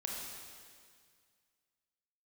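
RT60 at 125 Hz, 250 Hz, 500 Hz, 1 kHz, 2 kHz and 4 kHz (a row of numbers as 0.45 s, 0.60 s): 2.3 s, 2.1 s, 2.0 s, 2.0 s, 2.0 s, 2.0 s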